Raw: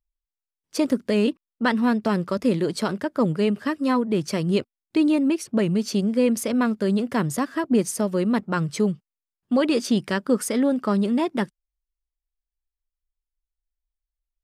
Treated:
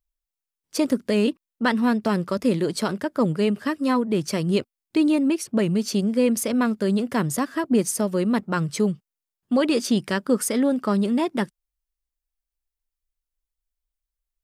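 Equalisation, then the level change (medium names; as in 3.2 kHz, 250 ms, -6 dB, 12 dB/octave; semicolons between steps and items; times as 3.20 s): treble shelf 7.2 kHz +5.5 dB; 0.0 dB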